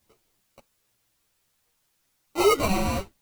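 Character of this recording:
aliases and images of a low sample rate 1,700 Hz, jitter 0%
sample-and-hold tremolo 2.6 Hz, depth 70%
a quantiser's noise floor 12 bits, dither triangular
a shimmering, thickened sound

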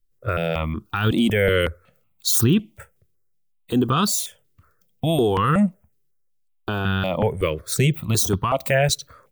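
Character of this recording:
notches that jump at a steady rate 5.4 Hz 210–2,200 Hz

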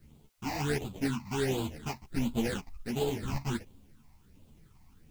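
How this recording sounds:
aliases and images of a low sample rate 1,200 Hz, jitter 20%
phaser sweep stages 8, 1.4 Hz, lowest notch 430–1,800 Hz
a quantiser's noise floor 12 bits, dither triangular
a shimmering, thickened sound

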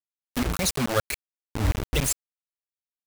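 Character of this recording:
phaser sweep stages 12, 2 Hz, lowest notch 120–1,100 Hz
tremolo saw up 7 Hz, depth 80%
a quantiser's noise floor 6 bits, dither none

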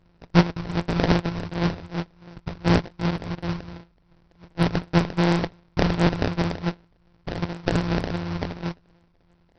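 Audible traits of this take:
a buzz of ramps at a fixed pitch in blocks of 256 samples
phaser sweep stages 2, 2.7 Hz, lowest notch 270–2,200 Hz
aliases and images of a low sample rate 1,200 Hz, jitter 20%
SBC

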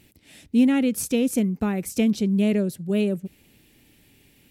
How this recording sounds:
background noise floor −59 dBFS
spectral slope −6.0 dB per octave

